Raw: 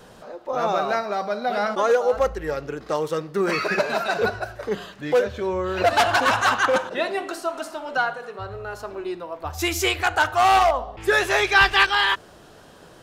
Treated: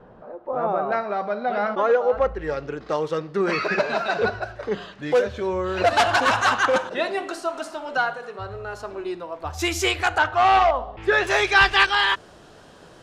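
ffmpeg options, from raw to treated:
ffmpeg -i in.wav -af "asetnsamples=nb_out_samples=441:pad=0,asendcmd='0.92 lowpass f 2500;2.39 lowpass f 5000;5.02 lowpass f 9500;10.18 lowpass f 3600;11.27 lowpass f 9000',lowpass=1200" out.wav

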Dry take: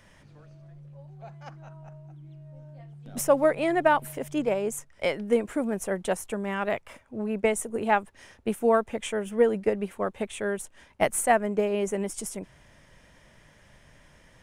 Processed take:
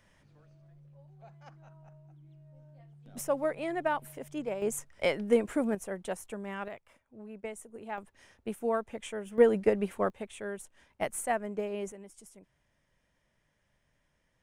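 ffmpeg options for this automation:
ffmpeg -i in.wav -af "asetnsamples=nb_out_samples=441:pad=0,asendcmd='4.62 volume volume -1.5dB;5.75 volume volume -8.5dB;6.68 volume volume -16dB;7.98 volume volume -8.5dB;9.38 volume volume -0.5dB;10.1 volume volume -9dB;11.92 volume volume -19dB',volume=-9dB" out.wav

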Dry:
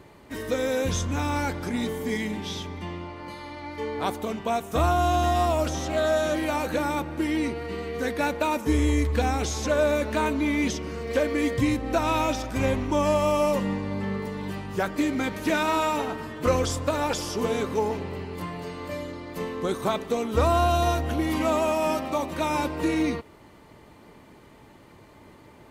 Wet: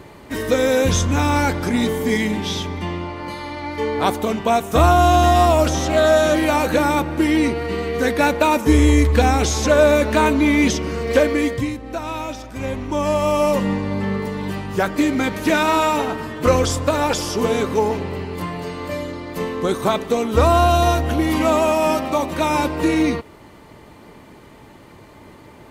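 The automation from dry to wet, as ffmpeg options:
ffmpeg -i in.wav -af "volume=19dB,afade=type=out:start_time=11.18:duration=0.55:silence=0.251189,afade=type=in:start_time=12.56:duration=1.15:silence=0.316228" out.wav

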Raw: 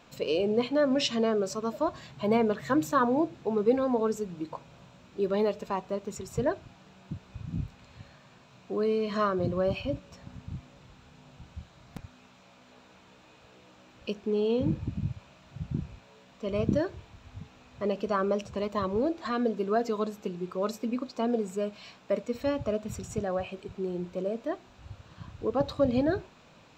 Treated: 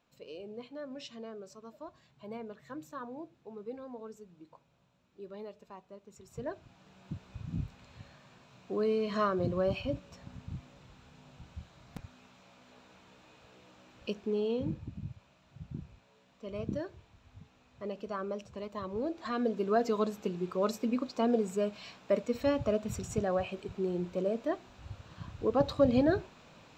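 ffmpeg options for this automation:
ffmpeg -i in.wav -af "volume=7dB,afade=type=in:start_time=6.1:duration=0.36:silence=0.446684,afade=type=in:start_time=6.46:duration=0.68:silence=0.375837,afade=type=out:start_time=14.15:duration=0.7:silence=0.446684,afade=type=in:start_time=18.83:duration=1.13:silence=0.334965" out.wav

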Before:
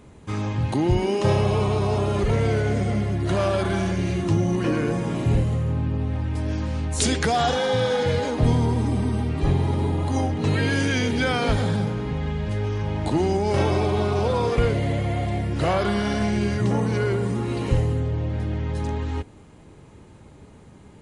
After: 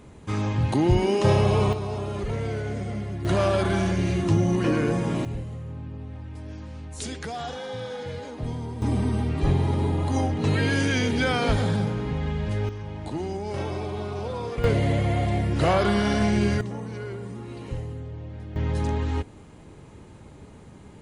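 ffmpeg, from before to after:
ffmpeg -i in.wav -af "asetnsamples=nb_out_samples=441:pad=0,asendcmd='1.73 volume volume -7.5dB;3.25 volume volume 0dB;5.25 volume volume -12dB;8.82 volume volume -1dB;12.69 volume volume -9dB;14.64 volume volume 1dB;16.61 volume volume -11.5dB;18.56 volume volume 1dB',volume=0.5dB" out.wav

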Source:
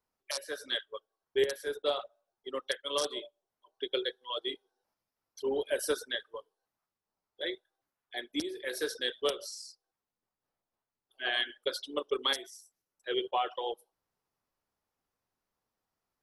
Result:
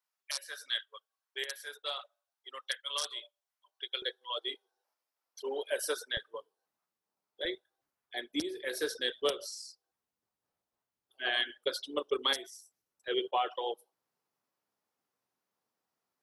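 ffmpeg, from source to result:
ffmpeg -i in.wav -af "asetnsamples=nb_out_samples=441:pad=0,asendcmd='4.02 highpass f 500;6.17 highpass f 140;7.45 highpass f 47;13.08 highpass f 160',highpass=1200" out.wav

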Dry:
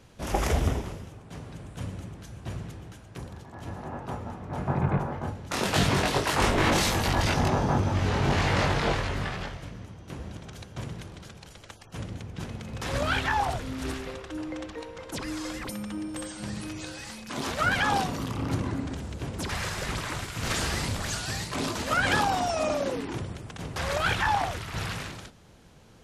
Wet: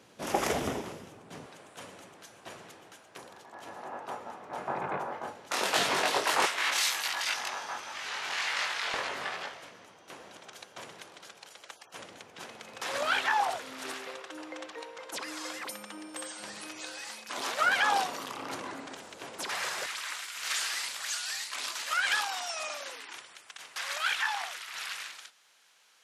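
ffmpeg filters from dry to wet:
ffmpeg -i in.wav -af "asetnsamples=nb_out_samples=441:pad=0,asendcmd='1.46 highpass f 510;6.46 highpass f 1500;8.94 highpass f 570;19.86 highpass f 1500',highpass=240" out.wav

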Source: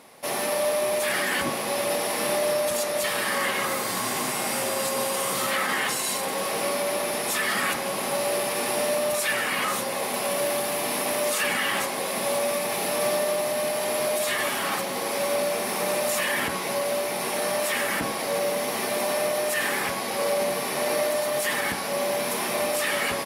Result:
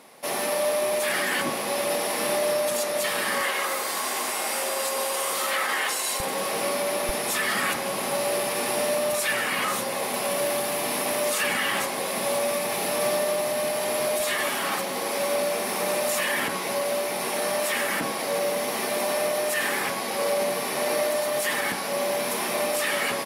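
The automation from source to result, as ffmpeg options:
ffmpeg -i in.wav -af "asetnsamples=nb_out_samples=441:pad=0,asendcmd='3.41 highpass f 400;6.2 highpass f 110;7.09 highpass f 41;14.2 highpass f 140',highpass=140" out.wav

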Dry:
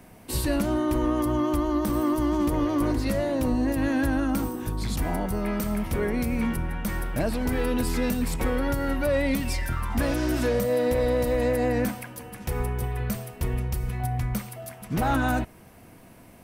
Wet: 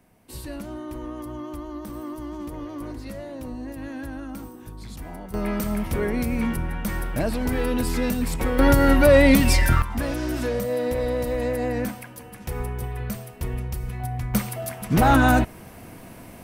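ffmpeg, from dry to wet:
ffmpeg -i in.wav -af "asetnsamples=nb_out_samples=441:pad=0,asendcmd='5.34 volume volume 1.5dB;8.59 volume volume 10dB;9.82 volume volume -1.5dB;14.34 volume volume 7.5dB',volume=-10dB" out.wav

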